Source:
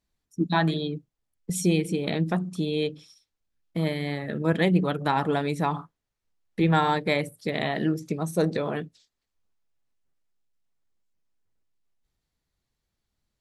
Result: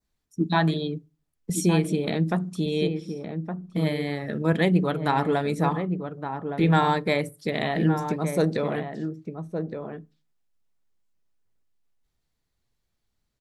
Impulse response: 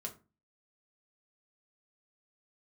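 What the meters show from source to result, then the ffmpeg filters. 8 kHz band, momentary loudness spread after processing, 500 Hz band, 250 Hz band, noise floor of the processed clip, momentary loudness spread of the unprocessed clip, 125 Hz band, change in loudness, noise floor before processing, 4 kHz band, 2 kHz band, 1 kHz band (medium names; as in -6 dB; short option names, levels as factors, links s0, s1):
+1.0 dB, 12 LU, +2.0 dB, +2.0 dB, -77 dBFS, 11 LU, +2.5 dB, +0.5 dB, -83 dBFS, 0.0 dB, +0.5 dB, +1.5 dB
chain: -filter_complex "[0:a]adynamicequalizer=threshold=0.00562:dfrequency=3000:dqfactor=1.5:tfrequency=3000:tqfactor=1.5:attack=5:release=100:ratio=0.375:range=2:mode=cutabove:tftype=bell,asplit=2[s0][s1];[s1]adelay=1166,volume=0.447,highshelf=f=4000:g=-26.2[s2];[s0][s2]amix=inputs=2:normalize=0,asplit=2[s3][s4];[1:a]atrim=start_sample=2205[s5];[s4][s5]afir=irnorm=-1:irlink=0,volume=0.188[s6];[s3][s6]amix=inputs=2:normalize=0"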